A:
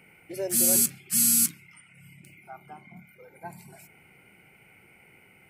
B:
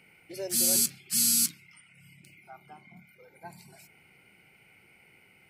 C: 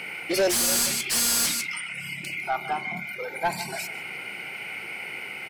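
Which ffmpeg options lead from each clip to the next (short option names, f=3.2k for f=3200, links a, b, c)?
-af "equalizer=f=4.4k:t=o:w=1.1:g=10,volume=-5dB"
-filter_complex "[0:a]asplit=2[a][b];[b]adelay=151.6,volume=-17dB,highshelf=f=4k:g=-3.41[c];[a][c]amix=inputs=2:normalize=0,asplit=2[d][e];[e]highpass=f=720:p=1,volume=32dB,asoftclip=type=tanh:threshold=-12dB[f];[d][f]amix=inputs=2:normalize=0,lowpass=f=4.2k:p=1,volume=-6dB"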